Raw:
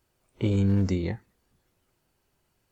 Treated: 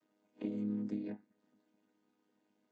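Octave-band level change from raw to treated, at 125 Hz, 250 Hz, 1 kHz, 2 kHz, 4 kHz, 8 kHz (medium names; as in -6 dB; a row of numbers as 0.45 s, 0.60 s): -23.5 dB, -10.0 dB, -15.0 dB, -19.0 dB, under -20 dB, no reading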